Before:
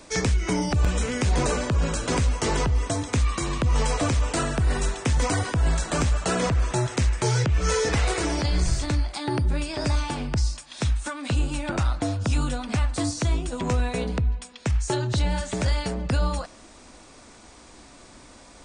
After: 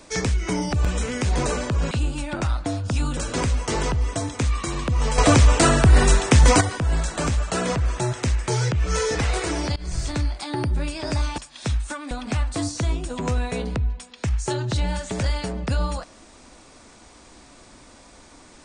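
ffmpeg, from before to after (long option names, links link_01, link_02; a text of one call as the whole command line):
ffmpeg -i in.wav -filter_complex "[0:a]asplit=8[link_01][link_02][link_03][link_04][link_05][link_06][link_07][link_08];[link_01]atrim=end=1.912[link_09];[link_02]atrim=start=11.268:end=12.532[link_10];[link_03]atrim=start=1.908:end=3.922[link_11];[link_04]atrim=start=3.918:end=5.352,asetpts=PTS-STARTPTS,volume=9dB[link_12];[link_05]atrim=start=5.348:end=8.5,asetpts=PTS-STARTPTS,afade=type=out:start_time=3.148:duration=0.004:curve=hsin:silence=0.0668344[link_13];[link_06]atrim=start=8.5:end=10.122,asetpts=PTS-STARTPTS,afade=type=in:duration=0.31:silence=0.0668344[link_14];[link_07]atrim=start=10.538:end=11.272[link_15];[link_08]atrim=start=12.528[link_16];[link_09][link_10]acrossfade=duration=0.004:curve1=hsin:curve2=hsin[link_17];[link_17][link_11]acrossfade=duration=0.004:curve1=hsin:curve2=hsin[link_18];[link_18][link_12]acrossfade=duration=0.004:curve1=hsin:curve2=hsin[link_19];[link_13][link_14]concat=n=2:v=0:a=1[link_20];[link_19][link_20]acrossfade=duration=0.004:curve1=hsin:curve2=hsin[link_21];[link_21][link_15]acrossfade=duration=0.004:curve1=hsin:curve2=hsin[link_22];[link_22][link_16]acrossfade=duration=0.004:curve1=hsin:curve2=hsin" out.wav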